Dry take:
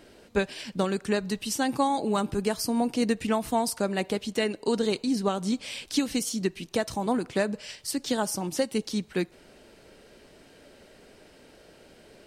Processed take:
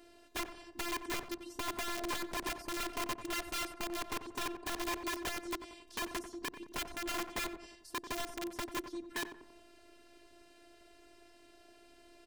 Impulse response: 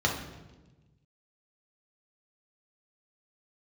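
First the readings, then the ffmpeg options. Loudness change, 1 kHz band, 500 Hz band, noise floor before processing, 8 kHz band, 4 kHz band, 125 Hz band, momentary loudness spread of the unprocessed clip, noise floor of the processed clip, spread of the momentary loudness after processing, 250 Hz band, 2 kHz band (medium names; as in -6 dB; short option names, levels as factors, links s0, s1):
-11.0 dB, -9.5 dB, -16.0 dB, -55 dBFS, -9.0 dB, -7.0 dB, -18.5 dB, 5 LU, -61 dBFS, 7 LU, -16.0 dB, -5.0 dB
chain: -filter_complex "[0:a]acrossover=split=680|1100[s0][s1][s2];[s2]acompressor=threshold=0.00355:ratio=8[s3];[s0][s1][s3]amix=inputs=3:normalize=0,afftfilt=real='hypot(re,im)*cos(PI*b)':imag='0':win_size=512:overlap=0.75,aeval=exprs='(mod(26.6*val(0)+1,2)-1)/26.6':c=same,asplit=2[s4][s5];[s5]adelay=91,lowpass=f=1300:p=1,volume=0.376,asplit=2[s6][s7];[s7]adelay=91,lowpass=f=1300:p=1,volume=0.53,asplit=2[s8][s9];[s9]adelay=91,lowpass=f=1300:p=1,volume=0.53,asplit=2[s10][s11];[s11]adelay=91,lowpass=f=1300:p=1,volume=0.53,asplit=2[s12][s13];[s13]adelay=91,lowpass=f=1300:p=1,volume=0.53,asplit=2[s14][s15];[s15]adelay=91,lowpass=f=1300:p=1,volume=0.53[s16];[s4][s6][s8][s10][s12][s14][s16]amix=inputs=7:normalize=0,volume=0.668"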